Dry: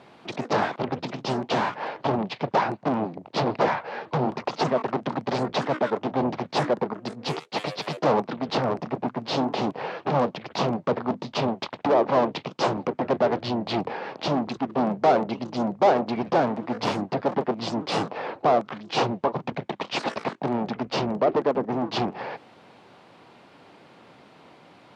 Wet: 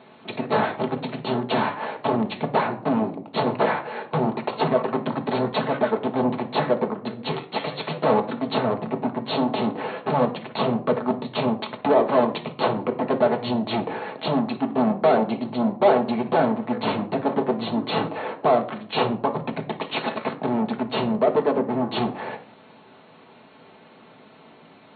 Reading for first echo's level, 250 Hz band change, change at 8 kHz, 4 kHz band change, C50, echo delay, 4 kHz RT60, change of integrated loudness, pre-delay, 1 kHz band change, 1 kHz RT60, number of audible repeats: none, +3.5 dB, under -35 dB, +0.5 dB, 13.5 dB, none, 0.30 s, +2.0 dB, 5 ms, +1.0 dB, 0.50 s, none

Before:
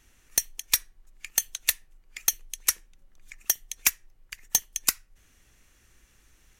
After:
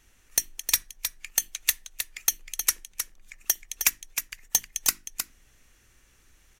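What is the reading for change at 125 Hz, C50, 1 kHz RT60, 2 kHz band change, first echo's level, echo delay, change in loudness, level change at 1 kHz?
n/a, none, none, +0.5 dB, -7.5 dB, 0.312 s, -0.5 dB, +0.5 dB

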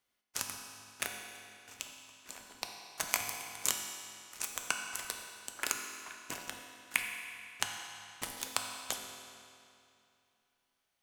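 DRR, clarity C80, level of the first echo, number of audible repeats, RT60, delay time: 2.0 dB, 4.5 dB, none, none, 2.6 s, none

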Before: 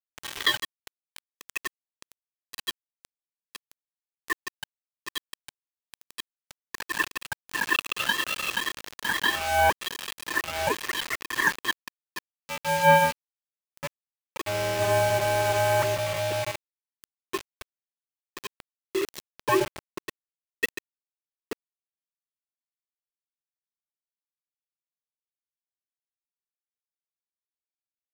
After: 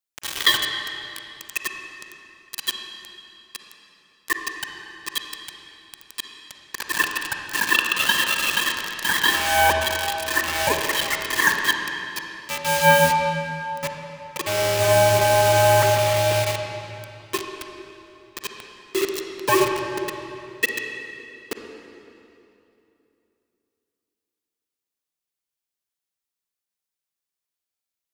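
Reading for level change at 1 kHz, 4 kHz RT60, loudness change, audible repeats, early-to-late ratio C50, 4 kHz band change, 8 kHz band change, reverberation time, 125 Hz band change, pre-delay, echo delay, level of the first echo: +5.0 dB, 2.3 s, +5.5 dB, none, 3.5 dB, +8.0 dB, +9.0 dB, 2.9 s, +7.0 dB, 37 ms, none, none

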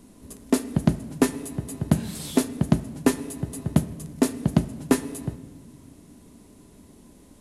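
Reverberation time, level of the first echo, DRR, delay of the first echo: 1.6 s, none, 10.5 dB, none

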